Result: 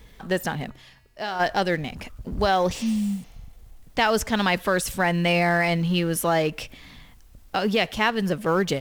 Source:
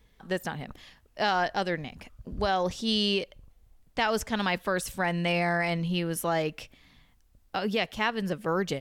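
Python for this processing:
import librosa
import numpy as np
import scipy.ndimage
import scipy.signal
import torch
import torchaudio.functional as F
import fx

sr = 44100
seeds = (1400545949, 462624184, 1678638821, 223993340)

y = fx.law_mismatch(x, sr, coded='mu')
y = fx.comb_fb(y, sr, f0_hz=130.0, decay_s=0.86, harmonics='odd', damping=0.0, mix_pct=70, at=(0.69, 1.39), fade=0.02)
y = fx.spec_repair(y, sr, seeds[0], start_s=2.77, length_s=0.71, low_hz=270.0, high_hz=6800.0, source='both')
y = y * librosa.db_to_amplitude(5.0)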